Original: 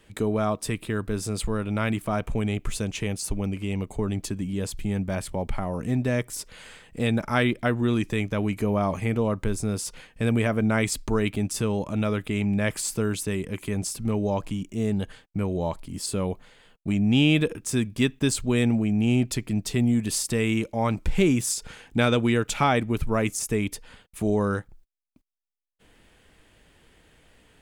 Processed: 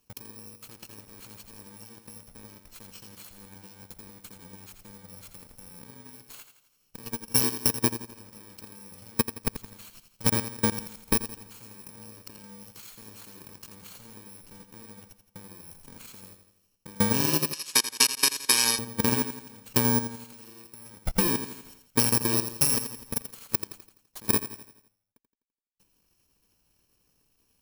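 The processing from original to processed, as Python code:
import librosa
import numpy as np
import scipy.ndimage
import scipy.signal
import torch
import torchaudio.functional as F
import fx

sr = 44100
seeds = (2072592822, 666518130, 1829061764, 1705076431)

p1 = fx.bit_reversed(x, sr, seeds[0], block=64)
p2 = fx.level_steps(p1, sr, step_db=22)
p3 = fx.low_shelf(p2, sr, hz=130.0, db=-6.5)
p4 = p3 + fx.echo_feedback(p3, sr, ms=84, feedback_pct=52, wet_db=-6, dry=0)
p5 = fx.transient(p4, sr, attack_db=9, sustain_db=-4)
p6 = fx.weighting(p5, sr, curve='ITU-R 468', at=(17.53, 18.79))
y = p6 * librosa.db_to_amplitude(-4.0)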